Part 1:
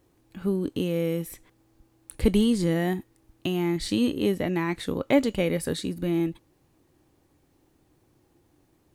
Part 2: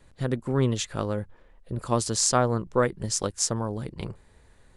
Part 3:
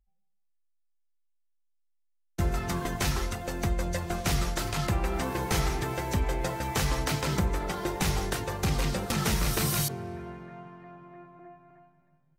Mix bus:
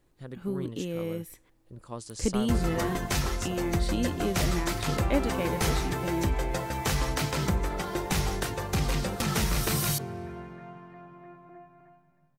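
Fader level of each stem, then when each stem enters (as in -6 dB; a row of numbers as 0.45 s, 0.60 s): -6.5 dB, -14.5 dB, 0.0 dB; 0.00 s, 0.00 s, 0.10 s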